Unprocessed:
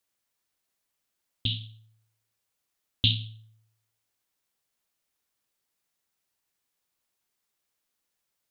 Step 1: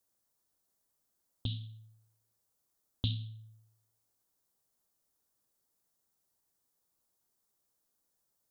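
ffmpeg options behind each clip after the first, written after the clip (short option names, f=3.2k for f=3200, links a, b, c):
-af "equalizer=f=2.5k:t=o:w=1.5:g=-14,acompressor=threshold=-46dB:ratio=1.5,volume=2.5dB"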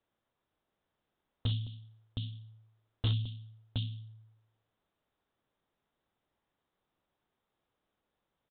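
-af "aecho=1:1:65|215|718:0.126|0.126|0.473,aresample=8000,asoftclip=type=hard:threshold=-30.5dB,aresample=44100,volume=5.5dB"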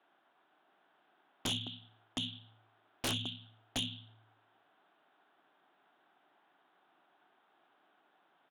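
-af "highpass=f=220:w=0.5412,highpass=f=220:w=1.3066,equalizer=f=220:t=q:w=4:g=-8,equalizer=f=500:t=q:w=4:g=-10,equalizer=f=740:t=q:w=4:g=7,equalizer=f=1.5k:t=q:w=4:g=6,equalizer=f=2.1k:t=q:w=4:g=-3,lowpass=f=3.4k:w=0.5412,lowpass=f=3.4k:w=1.3066,aeval=exprs='0.0447*sin(PI/2*4.47*val(0)/0.0447)':c=same,volume=-3dB"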